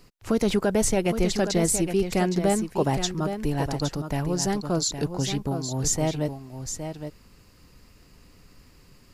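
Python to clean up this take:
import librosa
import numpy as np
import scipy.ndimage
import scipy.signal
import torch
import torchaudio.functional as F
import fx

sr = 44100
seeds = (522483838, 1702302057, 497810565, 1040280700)

y = fx.fix_echo_inverse(x, sr, delay_ms=815, level_db=-8.5)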